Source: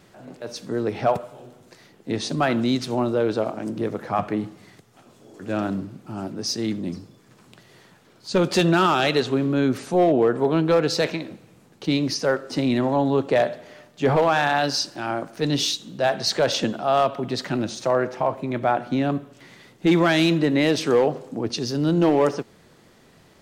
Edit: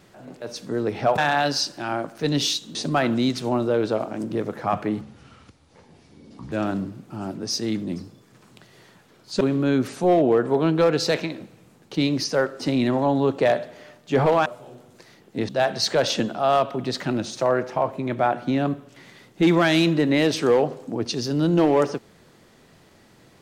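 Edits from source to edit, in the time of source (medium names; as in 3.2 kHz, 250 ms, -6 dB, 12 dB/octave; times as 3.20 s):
1.18–2.21 s: swap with 14.36–15.93 s
4.47–5.48 s: speed 67%
8.37–9.31 s: delete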